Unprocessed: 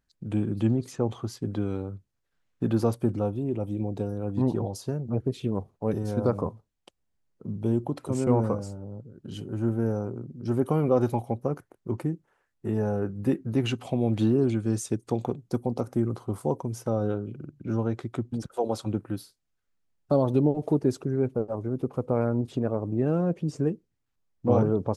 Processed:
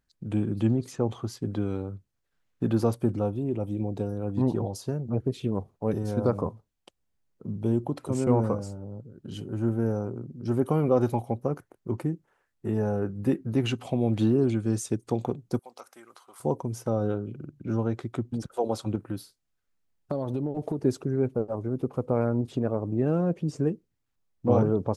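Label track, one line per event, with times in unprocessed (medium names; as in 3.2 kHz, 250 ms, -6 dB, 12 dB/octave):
15.590000	16.400000	high-pass 1.4 kHz
18.950000	20.790000	compression, threshold -25 dBFS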